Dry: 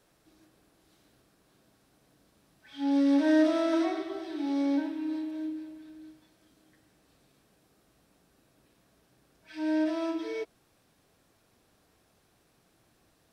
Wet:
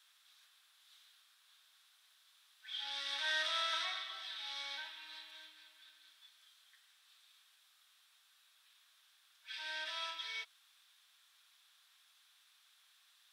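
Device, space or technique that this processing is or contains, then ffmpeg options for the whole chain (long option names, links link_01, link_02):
headphones lying on a table: -af "highpass=frequency=1200:width=0.5412,highpass=frequency=1200:width=1.3066,equalizer=frequency=3500:width_type=o:width=0.48:gain=11"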